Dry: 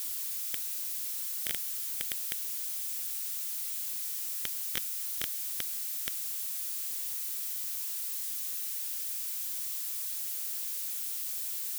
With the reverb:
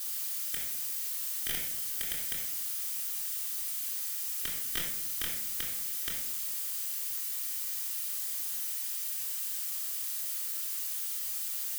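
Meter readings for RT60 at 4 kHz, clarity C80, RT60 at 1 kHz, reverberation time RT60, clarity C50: 0.45 s, 7.0 dB, 0.70 s, 0.75 s, 3.5 dB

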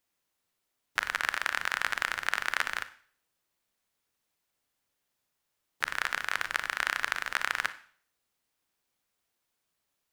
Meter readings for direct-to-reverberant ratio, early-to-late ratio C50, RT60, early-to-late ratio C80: 12.0 dB, 15.0 dB, 0.50 s, 19.5 dB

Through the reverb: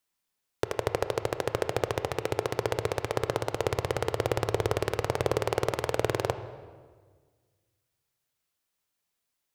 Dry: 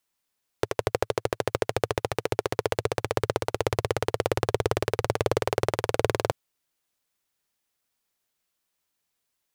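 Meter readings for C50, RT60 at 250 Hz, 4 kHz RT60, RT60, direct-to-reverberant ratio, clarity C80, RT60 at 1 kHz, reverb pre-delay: 11.5 dB, 2.0 s, 1.2 s, 1.6 s, 10.0 dB, 13.0 dB, 1.5 s, 20 ms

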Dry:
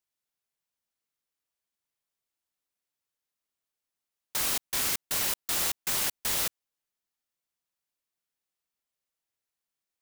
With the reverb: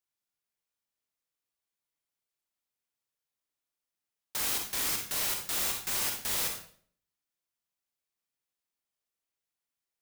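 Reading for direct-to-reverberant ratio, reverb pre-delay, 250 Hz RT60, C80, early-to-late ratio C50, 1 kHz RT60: 2.0 dB, 34 ms, 0.60 s, 9.5 dB, 5.0 dB, 0.50 s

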